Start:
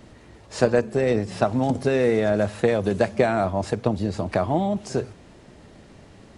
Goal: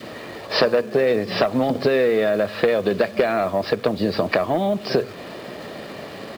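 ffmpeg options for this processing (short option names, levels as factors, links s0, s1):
-filter_complex "[0:a]highpass=250,aecho=1:1:1.7:0.31,aresample=11025,aeval=exprs='0.631*sin(PI/2*2*val(0)/0.631)':c=same,aresample=44100,acompressor=threshold=0.0794:ratio=6,asplit=2[s0][s1];[s1]acrusher=bits=6:mix=0:aa=0.000001,volume=0.355[s2];[s0][s2]amix=inputs=2:normalize=0,adynamicequalizer=threshold=0.0178:dfrequency=760:dqfactor=1.6:tfrequency=760:tqfactor=1.6:attack=5:release=100:ratio=0.375:range=2.5:mode=cutabove:tftype=bell,volume=1.58"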